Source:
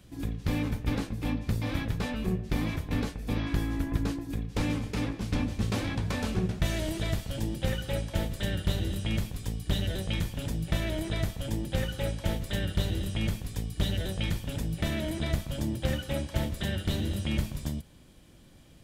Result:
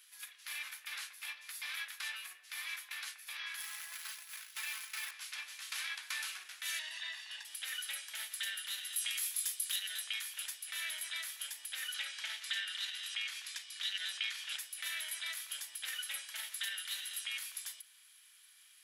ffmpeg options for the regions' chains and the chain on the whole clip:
-filter_complex "[0:a]asettb=1/sr,asplit=3[s0][s1][s2];[s0]atrim=end=3.604[s3];[s1]atrim=start=3.6:end=5.11,asetpts=PTS-STARTPTS,afade=t=in:d=0.004:c=qsin,afade=t=out:st=1.506:d=0.004:c=qsin,highshelf=f=4100:g=-6,acrusher=bits=4:mode=log:mix=0:aa=0.000001,aecho=1:1:4.6:0.59,atrim=end_sample=66591[s4];[s2]atrim=start=5.106[s5];[s3][s4]acrossfade=d=0.004:c1=hsin:c2=qsin[s6];[s6][s5]acrossfade=d=0.004:c1=qsin:c2=hsin,asettb=1/sr,asplit=3[s7][s8][s9];[s7]atrim=end=6.794[s10];[s8]atrim=start=6.79:end=7.45,asetpts=PTS-STARTPTS,afade=t=in:d=0.004:c=qsin,afade=t=out:st=0.656:d=0.004:c=qsin,lowpass=4200,aecho=1:1:1.1:0.75,atrim=end_sample=29106[s11];[s9]atrim=start=7.446[s12];[s10][s11]acrossfade=d=0.004:c1=hsin:c2=qsin[s13];[s13][s12]acrossfade=d=0.004:c1=qsin:c2=hsin,asettb=1/sr,asplit=3[s14][s15][s16];[s14]atrim=end=8.964[s17];[s15]atrim=start=8.96:end=9.76,asetpts=PTS-STARTPTS,afade=t=in:d=0.004:c=qsin,afade=t=out:st=0.796:d=0.004:c=qsin,aemphasis=mode=production:type=cd,volume=10.6,asoftclip=hard,volume=0.0944,asplit=2[s18][s19];[s19]adelay=23,volume=0.473[s20];[s18][s20]amix=inputs=2:normalize=0,atrim=end_sample=35280[s21];[s16]atrim=start=9.756[s22];[s17][s21]acrossfade=d=0.004:c1=hsin:c2=qsin[s23];[s23][s22]acrossfade=d=0.004:c1=qsin:c2=hsin,asettb=1/sr,asplit=3[s24][s25][s26];[s24]atrim=end=11.944[s27];[s25]atrim=start=11.94:end=14.59,asetpts=PTS-STARTPTS,afade=t=in:d=0.004:c=qsin,afade=t=out:st=2.646:d=0.004:c=qsin,lowpass=6000,equalizer=f=500:t=o:w=2.4:g=-3.5,acontrast=67[s28];[s26]atrim=start=14.586[s29];[s27][s28]acrossfade=d=0.004:c1=hsin:c2=qsin[s30];[s30][s29]acrossfade=d=0.004:c1=qsin:c2=hsin,equalizer=f=11000:w=7.2:g=14.5,alimiter=limit=0.0794:level=0:latency=1:release=34,highpass=f=1500:w=0.5412,highpass=f=1500:w=1.3066,volume=1.12"

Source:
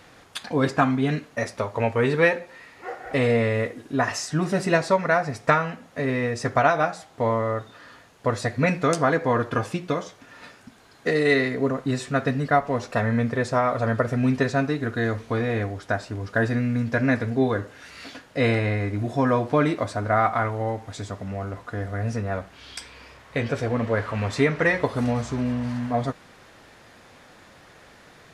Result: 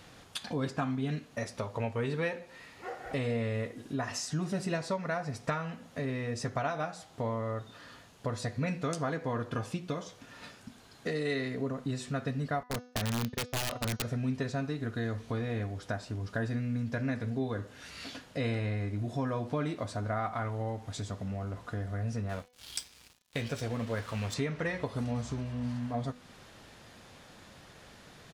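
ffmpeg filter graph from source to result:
-filter_complex "[0:a]asettb=1/sr,asplit=3[s0][s1][s2];[s0]atrim=end=12.634[s3];[s1]atrim=start=12.63:end=14.03,asetpts=PTS-STARTPTS,afade=t=in:d=0.004:c=qsin,afade=t=out:st=1.396:d=0.004:c=qsin,agate=range=0.0141:threshold=0.0501:ratio=16:release=100:detection=peak,aeval=exprs='(mod(6.31*val(0)+1,2)-1)/6.31':c=same[s4];[s2]atrim=start=14.026[s5];[s3][s4]acrossfade=d=0.004:c1=hsin:c2=qsin[s6];[s6][s5]acrossfade=d=0.004:c1=qsin:c2=hsin,asettb=1/sr,asplit=3[s7][s8][s9];[s7]atrim=end=22.294[s10];[s8]atrim=start=22.29:end=24.34,asetpts=PTS-STARTPTS,afade=t=in:d=0.004:c=qsin,afade=t=out:st=2.046:d=0.004:c=qsin,highshelf=f=2900:g=10,aeval=exprs='sgn(val(0))*max(abs(val(0))-0.01,0)':c=same[s11];[s9]atrim=start=24.336[s12];[s10][s11]acrossfade=d=0.004:c1=hsin:c2=qsin[s13];[s13][s12]acrossfade=d=0.004:c1=qsin:c2=hsin,firequalizer=gain_entry='entry(210,0);entry(310,-4);entry(2000,-6);entry(3000,-1)':delay=0.05:min_phase=1,acompressor=threshold=0.0158:ratio=2,bandreject=f=247.8:t=h:w=4,bandreject=f=495.6:t=h:w=4,bandreject=f=743.4:t=h:w=4,bandreject=f=991.2:t=h:w=4,bandreject=f=1239:t=h:w=4,bandreject=f=1486.8:t=h:w=4,bandreject=f=1734.6:t=h:w=4,bandreject=f=1982.4:t=h:w=4,bandreject=f=2230.2:t=h:w=4,bandreject=f=2478:t=h:w=4,bandreject=f=2725.8:t=h:w=4,bandreject=f=2973.6:t=h:w=4,bandreject=f=3221.4:t=h:w=4,bandreject=f=3469.2:t=h:w=4,bandreject=f=3717:t=h:w=4,bandreject=f=3964.8:t=h:w=4,bandreject=f=4212.6:t=h:w=4,bandreject=f=4460.4:t=h:w=4,bandreject=f=4708.2:t=h:w=4,bandreject=f=4956:t=h:w=4,bandreject=f=5203.8:t=h:w=4,bandreject=f=5451.6:t=h:w=4,bandreject=f=5699.4:t=h:w=4,bandreject=f=5947.2:t=h:w=4,bandreject=f=6195:t=h:w=4,bandreject=f=6442.8:t=h:w=4,bandreject=f=6690.6:t=h:w=4"

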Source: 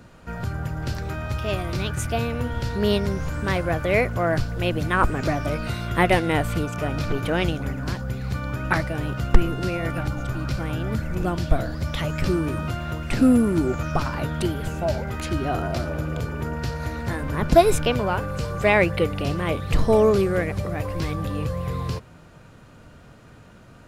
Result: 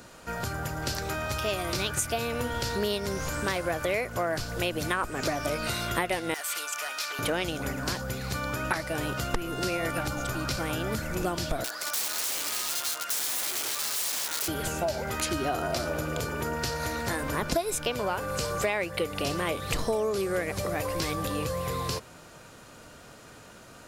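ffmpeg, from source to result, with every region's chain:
-filter_complex "[0:a]asettb=1/sr,asplit=3[s0][s1][s2];[s0]atrim=end=6.344[s3];[s1]atrim=start=6.34:end=7.19,asetpts=PTS-STARTPTS,afade=t=in:d=0.004:c=qsin,afade=t=out:st=0.846:d=0.004:c=qsin,highpass=1300,volume=33.5,asoftclip=hard,volume=0.0299[s4];[s2]atrim=start=7.186[s5];[s3][s4]acrossfade=d=0.004:c1=hsin:c2=qsin[s6];[s6][s5]acrossfade=d=0.004:c1=qsin:c2=hsin,asettb=1/sr,asplit=3[s7][s8][s9];[s7]atrim=end=11.644[s10];[s8]atrim=start=11.64:end=14.48,asetpts=PTS-STARTPTS,afade=t=in:d=0.004:c=qsin,afade=t=out:st=2.836:d=0.004:c=qsin,highpass=750,equalizer=f=1400:t=o:w=0.46:g=5.5,aeval=exprs='(mod(31.6*val(0)+1,2)-1)/31.6':c=same[s11];[s9]atrim=start=14.476[s12];[s10][s11]acrossfade=d=0.004:c1=hsin:c2=qsin[s13];[s13][s12]acrossfade=d=0.004:c1=qsin:c2=hsin,bass=f=250:g=-10,treble=f=4000:g=9,acompressor=threshold=0.0447:ratio=8,volume=1.26"

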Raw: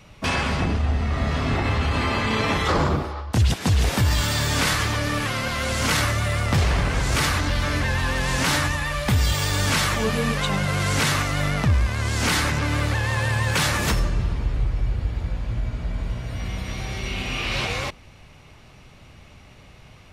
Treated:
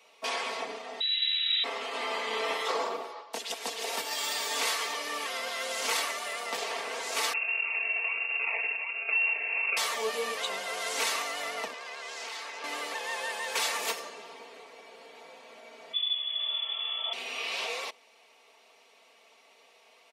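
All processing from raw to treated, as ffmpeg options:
-filter_complex "[0:a]asettb=1/sr,asplit=3[s0][s1][s2];[s0]atrim=end=1.004[s3];[s1]atrim=start=1:end=1.64,asetpts=PTS-STARTPTS,afade=t=in:d=0.004:c=qsin,afade=t=out:st=0.636:d=0.004:c=qsin,lowpass=f=3400:t=q:w=0.5098,lowpass=f=3400:t=q:w=0.6013,lowpass=f=3400:t=q:w=0.9,lowpass=f=3400:t=q:w=2.563,afreqshift=-4000,asuperpass=centerf=2900:order=8:qfactor=0.86[s4];[s2]atrim=start=1.636[s5];[s3][s4]acrossfade=d=0.004:c1=hsin:c2=qsin[s6];[s6][s5]acrossfade=d=0.004:c1=qsin:c2=hsin,asettb=1/sr,asplit=3[s7][s8][s9];[s7]atrim=end=7.334[s10];[s8]atrim=start=7.33:end=9.77,asetpts=PTS-STARTPTS,afade=t=in:d=0.004:c=qsin,afade=t=out:st=2.436:d=0.004:c=qsin,acrusher=samples=38:mix=1:aa=0.000001:lfo=1:lforange=22.8:lforate=1.3,lowpass=f=2400:t=q:w=0.5098,lowpass=f=2400:t=q:w=0.6013,lowpass=f=2400:t=q:w=0.9,lowpass=f=2400:t=q:w=2.563,afreqshift=-2800,aemphasis=mode=reproduction:type=riaa[s11];[s9]atrim=start=9.766[s12];[s10][s11]acrossfade=d=0.004:c1=hsin:c2=qsin[s13];[s13][s12]acrossfade=d=0.004:c1=qsin:c2=hsin,asettb=1/sr,asplit=3[s14][s15][s16];[s14]atrim=end=11.734[s17];[s15]atrim=start=11.73:end=12.64,asetpts=PTS-STARTPTS,afade=t=in:d=0.004:c=qsin,afade=t=out:st=0.906:d=0.004:c=qsin,highpass=95,acrossover=split=310 7000:gain=0.2 1 0.224[s18][s19][s20];[s18][s19][s20]amix=inputs=3:normalize=0,acompressor=threshold=0.0398:ratio=10:attack=3.2:release=140:knee=1:detection=peak[s21];[s16]atrim=start=12.636[s22];[s17][s21]acrossfade=d=0.004:c1=hsin:c2=qsin[s23];[s23][s22]acrossfade=d=0.004:c1=qsin:c2=hsin,asettb=1/sr,asplit=3[s24][s25][s26];[s24]atrim=end=15.934[s27];[s25]atrim=start=15.93:end=17.13,asetpts=PTS-STARTPTS,afade=t=in:d=0.004:c=qsin,afade=t=out:st=1.196:d=0.004:c=qsin,lowpass=f=3000:t=q:w=0.5098,lowpass=f=3000:t=q:w=0.6013,lowpass=f=3000:t=q:w=0.9,lowpass=f=3000:t=q:w=2.563,afreqshift=-3500,asuperstop=centerf=1500:order=8:qfactor=5.5[s28];[s26]atrim=start=17.126[s29];[s27][s28]acrossfade=d=0.004:c1=hsin:c2=qsin[s30];[s30][s29]acrossfade=d=0.004:c1=qsin:c2=hsin,highpass=f=430:w=0.5412,highpass=f=430:w=1.3066,equalizer=f=1500:w=2.6:g=-7,aecho=1:1:4.4:0.69,volume=0.447"

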